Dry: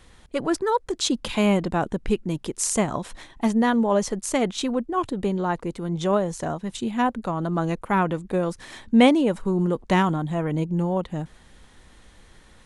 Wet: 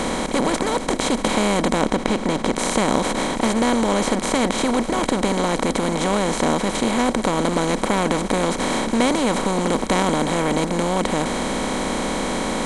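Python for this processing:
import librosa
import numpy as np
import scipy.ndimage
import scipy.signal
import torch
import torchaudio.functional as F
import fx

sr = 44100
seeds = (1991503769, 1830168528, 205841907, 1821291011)

y = fx.bin_compress(x, sr, power=0.2)
y = fx.high_shelf(y, sr, hz=8100.0, db=-10.5, at=(1.81, 2.56))
y = y * 10.0 ** (-7.0 / 20.0)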